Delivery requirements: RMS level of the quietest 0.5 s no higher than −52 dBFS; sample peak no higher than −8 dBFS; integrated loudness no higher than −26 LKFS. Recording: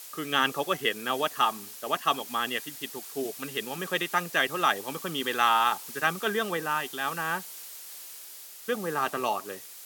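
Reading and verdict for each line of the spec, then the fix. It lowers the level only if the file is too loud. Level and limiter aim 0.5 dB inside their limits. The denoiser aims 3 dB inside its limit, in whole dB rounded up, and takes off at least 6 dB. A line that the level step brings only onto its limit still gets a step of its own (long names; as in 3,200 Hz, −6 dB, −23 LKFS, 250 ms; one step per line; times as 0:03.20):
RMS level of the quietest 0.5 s −45 dBFS: out of spec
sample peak −8.5 dBFS: in spec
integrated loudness −28.5 LKFS: in spec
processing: broadband denoise 10 dB, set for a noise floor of −45 dBFS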